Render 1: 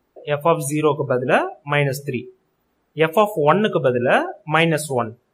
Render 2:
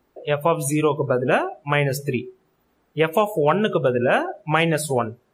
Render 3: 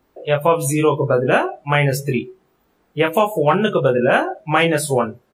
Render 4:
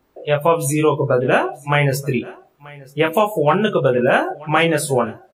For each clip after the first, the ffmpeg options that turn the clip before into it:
-af "acompressor=threshold=-20dB:ratio=2,volume=2dB"
-filter_complex "[0:a]asplit=2[a][b];[b]adelay=22,volume=-3.5dB[c];[a][c]amix=inputs=2:normalize=0,volume=2dB"
-af "aecho=1:1:933:0.0794"

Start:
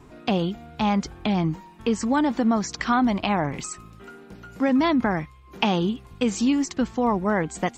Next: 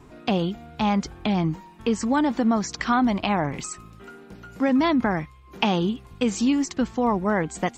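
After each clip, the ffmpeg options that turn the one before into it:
-af anull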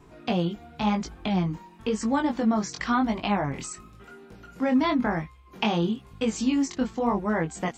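-af "flanger=delay=18:depth=5.6:speed=0.95"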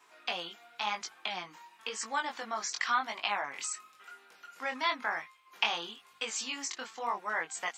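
-af "highpass=1.2k,volume=1dB"

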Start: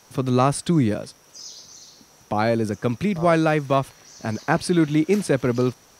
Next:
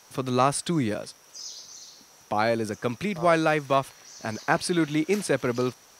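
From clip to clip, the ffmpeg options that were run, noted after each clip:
-af "lowshelf=f=370:g=-9.5"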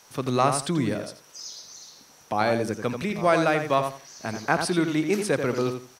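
-filter_complex "[0:a]asplit=2[a][b];[b]adelay=86,lowpass=f=2.8k:p=1,volume=-6.5dB,asplit=2[c][d];[d]adelay=86,lowpass=f=2.8k:p=1,volume=0.22,asplit=2[e][f];[f]adelay=86,lowpass=f=2.8k:p=1,volume=0.22[g];[a][c][e][g]amix=inputs=4:normalize=0"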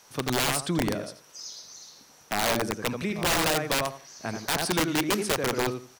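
-af "aeval=exprs='(mod(6.68*val(0)+1,2)-1)/6.68':c=same,volume=-1.5dB"

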